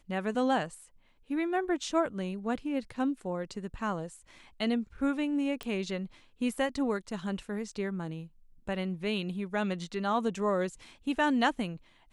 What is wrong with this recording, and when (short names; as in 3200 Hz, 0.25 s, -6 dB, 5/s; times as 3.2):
5.63 pop -23 dBFS